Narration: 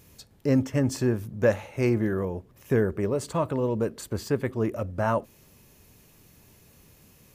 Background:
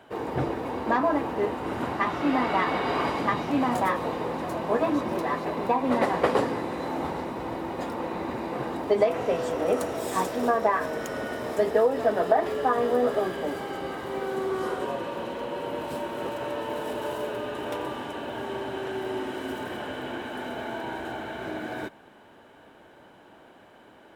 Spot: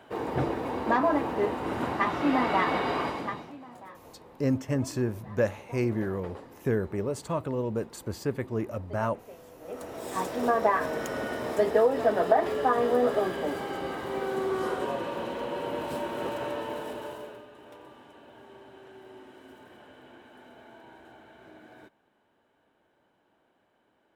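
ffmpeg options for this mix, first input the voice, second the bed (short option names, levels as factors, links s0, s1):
-filter_complex "[0:a]adelay=3950,volume=0.631[s0];[1:a]volume=11.2,afade=t=out:st=2.77:d=0.8:silence=0.0841395,afade=t=in:st=9.61:d=0.99:silence=0.0841395,afade=t=out:st=16.38:d=1.09:silence=0.141254[s1];[s0][s1]amix=inputs=2:normalize=0"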